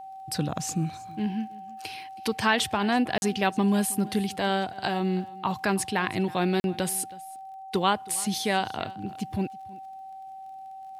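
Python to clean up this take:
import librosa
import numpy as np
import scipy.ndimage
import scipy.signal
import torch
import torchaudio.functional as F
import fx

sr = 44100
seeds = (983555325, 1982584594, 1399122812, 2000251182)

y = fx.fix_declick_ar(x, sr, threshold=6.5)
y = fx.notch(y, sr, hz=770.0, q=30.0)
y = fx.fix_interpolate(y, sr, at_s=(3.18, 6.6), length_ms=41.0)
y = fx.fix_echo_inverse(y, sr, delay_ms=321, level_db=-21.0)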